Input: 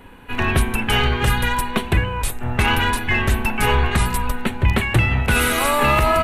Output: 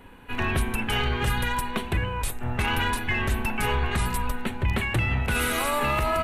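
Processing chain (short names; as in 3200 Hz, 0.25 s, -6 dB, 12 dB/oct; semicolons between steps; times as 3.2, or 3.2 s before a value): limiter -10.5 dBFS, peak gain reduction 5 dB; gain -5 dB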